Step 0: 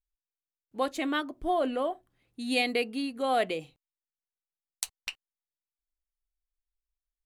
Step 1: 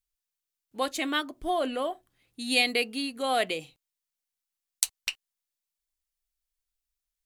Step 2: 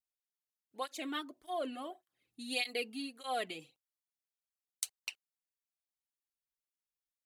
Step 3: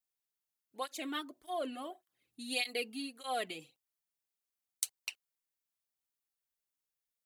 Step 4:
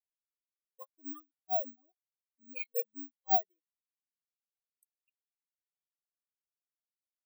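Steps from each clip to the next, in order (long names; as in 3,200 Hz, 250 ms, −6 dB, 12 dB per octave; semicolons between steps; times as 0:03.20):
high-shelf EQ 2,000 Hz +10 dB; level −1.5 dB
through-zero flanger with one copy inverted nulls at 1.7 Hz, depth 2.1 ms; level −8 dB
high-shelf EQ 9,200 Hz +5.5 dB
bad sample-rate conversion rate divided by 2×, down filtered, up zero stuff; every bin expanded away from the loudest bin 4 to 1; level −7 dB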